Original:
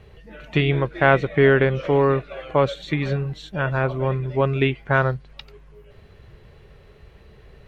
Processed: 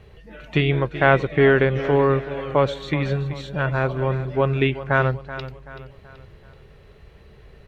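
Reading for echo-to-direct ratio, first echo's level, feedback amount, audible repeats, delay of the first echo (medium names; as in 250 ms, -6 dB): -13.0 dB, -14.0 dB, 43%, 3, 380 ms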